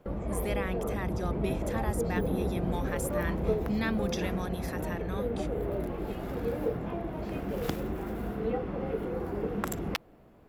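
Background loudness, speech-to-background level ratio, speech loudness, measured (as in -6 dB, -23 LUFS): -33.5 LUFS, -3.5 dB, -37.0 LUFS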